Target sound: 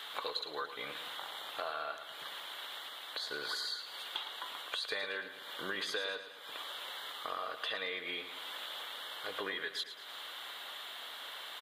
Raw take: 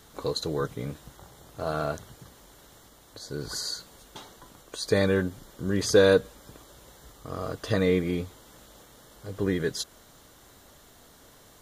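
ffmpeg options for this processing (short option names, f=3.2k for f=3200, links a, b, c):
-filter_complex "[0:a]highpass=1k,highshelf=f=4.5k:t=q:w=3:g=-10,acompressor=threshold=-48dB:ratio=8,asplit=2[a][b];[b]aecho=0:1:111|222|333|444|555|666:0.282|0.152|0.0822|0.0444|0.024|0.0129[c];[a][c]amix=inputs=2:normalize=0,volume=11.5dB"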